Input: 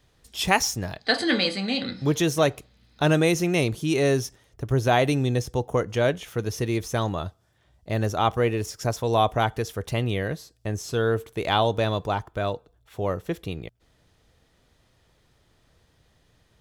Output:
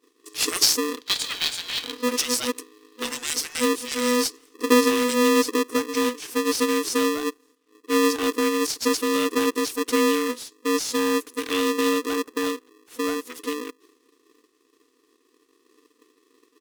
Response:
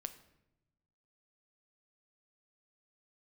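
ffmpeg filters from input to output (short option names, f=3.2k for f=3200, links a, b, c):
-filter_complex "[0:a]agate=range=-33dB:threshold=-56dB:ratio=3:detection=peak,afftfilt=real='re*(1-between(b*sr/4096,150,790))':imag='im*(1-between(b*sr/4096,150,790))':win_size=4096:overlap=0.75,bass=f=250:g=11,treble=f=4k:g=13,acrossover=split=410|520|3100[a][b][c][d];[c]acompressor=threshold=-33dB:ratio=6[e];[d]acrusher=bits=4:mode=log:mix=0:aa=0.000001[f];[a][b][e][f]amix=inputs=4:normalize=0,asetrate=39289,aresample=44100,atempo=1.12246,aeval=exprs='val(0)*sgn(sin(2*PI*370*n/s))':c=same,volume=-2.5dB"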